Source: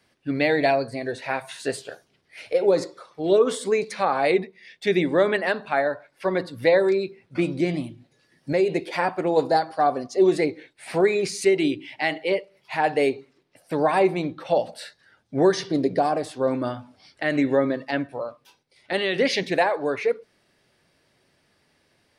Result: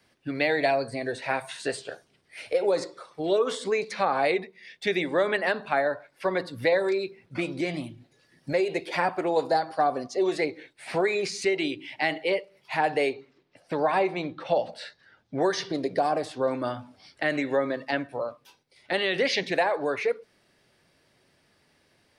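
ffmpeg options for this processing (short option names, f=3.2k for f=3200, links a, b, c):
-filter_complex "[0:a]asettb=1/sr,asplit=3[a][b][c];[a]atrim=end=0.644[d];[b]atrim=start=0.64:end=3.26,asetpts=PTS-STARTPTS,afade=t=in:d=0.004:c=qsin,afade=t=out:st=2.616:d=0.004:c=qsin,equalizer=f=8.6k:t=o:w=0.23:g=8[e];[c]atrim=start=3.256[f];[d][e]acrossfade=d=0.004:c1=hsin:c2=qsin[g];[g][f]acrossfade=d=0.004:c1=qsin:c2=hsin,asettb=1/sr,asplit=3[h][i][j];[h]atrim=end=6.724[k];[i]atrim=start=6.72:end=9.29,asetpts=PTS-STARTPTS,afade=t=in:d=0.004:c=qsin,afade=t=out:st=2.566:d=0.004:c=qsin,aphaser=in_gain=1:out_gain=1:delay=3.2:decay=0.24:speed=1.8:type=triangular[l];[j]atrim=start=9.286[m];[k][l]acrossfade=d=0.004:c1=hsin:c2=qsin[n];[n][m]acrossfade=d=0.004:c1=qsin:c2=hsin,asettb=1/sr,asplit=3[o][p][q];[o]atrim=end=13.134[r];[p]atrim=start=13.13:end=15.41,asetpts=PTS-STARTPTS,afade=t=in:d=0.004:c=qsin,afade=t=out:st=2.276:d=0.004:c=qsin,lowpass=5.4k[s];[q]atrim=start=15.406[t];[r][s]acrossfade=d=0.004:c1=hsin:c2=qsin[u];[u][t]acrossfade=d=0.004:c1=qsin:c2=hsin,acrossover=split=490|7100[v][w][x];[v]acompressor=threshold=-32dB:ratio=4[y];[w]acompressor=threshold=-21dB:ratio=4[z];[x]acompressor=threshold=-56dB:ratio=4[aa];[y][z][aa]amix=inputs=3:normalize=0"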